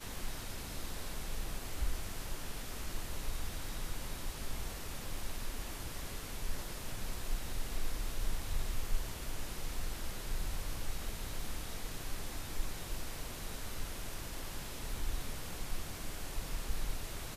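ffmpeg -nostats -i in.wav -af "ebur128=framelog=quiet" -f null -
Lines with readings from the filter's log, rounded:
Integrated loudness:
  I:         -42.9 LUFS
  Threshold: -52.9 LUFS
Loudness range:
  LRA:         1.4 LU
  Threshold: -62.9 LUFS
  LRA low:   -43.4 LUFS
  LRA high:  -42.0 LUFS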